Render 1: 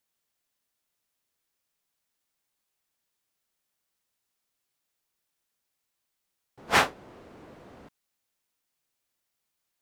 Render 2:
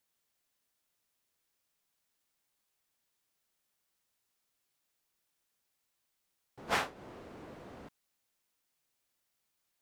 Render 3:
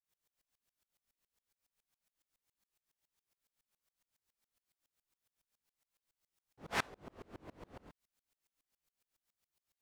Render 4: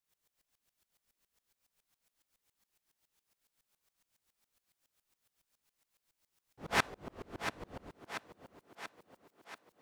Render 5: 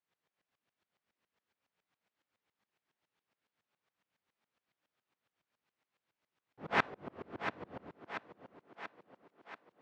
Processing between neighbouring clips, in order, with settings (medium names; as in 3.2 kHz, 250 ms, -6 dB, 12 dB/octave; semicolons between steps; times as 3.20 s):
compression 16:1, threshold -28 dBFS, peak gain reduction 13 dB
bass shelf 72 Hz +10 dB; chorus 0.32 Hz, delay 18 ms, depth 5 ms; sawtooth tremolo in dB swelling 7.2 Hz, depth 30 dB; trim +6 dB
thinning echo 685 ms, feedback 62%, high-pass 150 Hz, level -8.5 dB; trim +5.5 dB
band-pass 120–2600 Hz; trim +1 dB